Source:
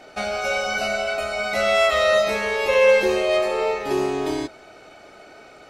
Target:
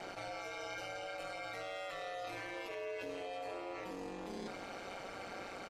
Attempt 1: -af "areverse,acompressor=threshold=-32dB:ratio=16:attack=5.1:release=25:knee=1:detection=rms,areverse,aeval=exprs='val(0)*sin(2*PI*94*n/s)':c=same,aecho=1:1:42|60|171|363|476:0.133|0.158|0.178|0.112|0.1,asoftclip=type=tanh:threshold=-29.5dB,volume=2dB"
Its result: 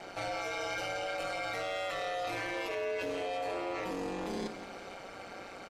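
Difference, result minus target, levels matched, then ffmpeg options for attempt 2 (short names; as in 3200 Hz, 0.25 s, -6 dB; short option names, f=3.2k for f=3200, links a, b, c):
compressor: peak gain reduction -9 dB
-af "areverse,acompressor=threshold=-41.5dB:ratio=16:attack=5.1:release=25:knee=1:detection=rms,areverse,aeval=exprs='val(0)*sin(2*PI*94*n/s)':c=same,aecho=1:1:42|60|171|363|476:0.133|0.158|0.178|0.112|0.1,asoftclip=type=tanh:threshold=-29.5dB,volume=2dB"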